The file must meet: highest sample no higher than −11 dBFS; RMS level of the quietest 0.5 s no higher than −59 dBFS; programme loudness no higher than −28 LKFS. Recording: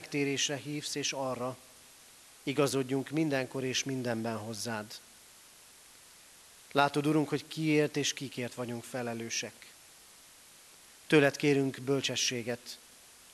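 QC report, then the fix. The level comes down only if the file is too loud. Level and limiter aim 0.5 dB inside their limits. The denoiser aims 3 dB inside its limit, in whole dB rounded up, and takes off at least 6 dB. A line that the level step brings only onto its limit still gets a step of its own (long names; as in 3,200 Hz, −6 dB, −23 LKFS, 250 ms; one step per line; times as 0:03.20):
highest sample −8.5 dBFS: out of spec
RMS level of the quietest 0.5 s −56 dBFS: out of spec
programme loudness −32.0 LKFS: in spec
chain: broadband denoise 6 dB, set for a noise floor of −56 dBFS
brickwall limiter −11.5 dBFS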